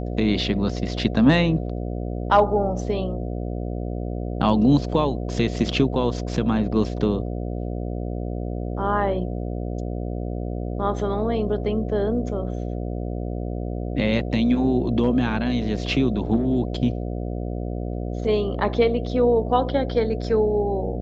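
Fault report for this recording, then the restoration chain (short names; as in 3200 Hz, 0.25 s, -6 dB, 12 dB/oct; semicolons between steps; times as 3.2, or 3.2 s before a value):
buzz 60 Hz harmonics 12 -28 dBFS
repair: de-hum 60 Hz, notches 12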